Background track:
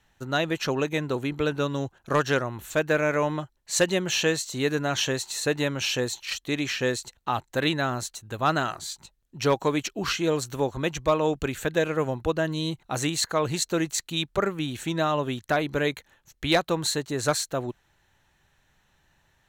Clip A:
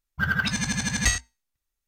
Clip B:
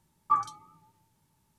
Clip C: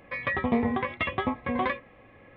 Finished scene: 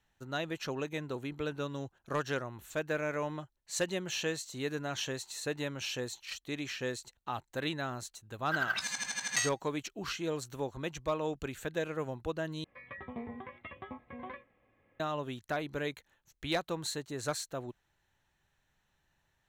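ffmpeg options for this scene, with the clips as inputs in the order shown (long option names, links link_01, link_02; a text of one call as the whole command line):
ffmpeg -i bed.wav -i cue0.wav -i cue1.wav -i cue2.wav -filter_complex "[0:a]volume=-10.5dB[link_01];[1:a]highpass=600[link_02];[3:a]acrossover=split=3400[link_03][link_04];[link_04]acompressor=threshold=-59dB:ratio=4:attack=1:release=60[link_05];[link_03][link_05]amix=inputs=2:normalize=0[link_06];[link_01]asplit=2[link_07][link_08];[link_07]atrim=end=12.644[link_09];[link_06]atrim=end=2.36,asetpts=PTS-STARTPTS,volume=-17dB[link_10];[link_08]atrim=start=14.996[link_11];[link_02]atrim=end=1.87,asetpts=PTS-STARTPTS,volume=-7.5dB,afade=type=in:duration=0.004:curve=hsin,afade=type=out:start_time=1.866:duration=0.004:curve=hsin,adelay=8310[link_12];[link_09][link_10]acrossfade=duration=0.004:curve1=hsin:curve2=hsin[link_13];[link_13][link_11]acrossfade=duration=0.004:curve1=hsin:curve2=hsin[link_14];[link_14][link_12]amix=inputs=2:normalize=0" out.wav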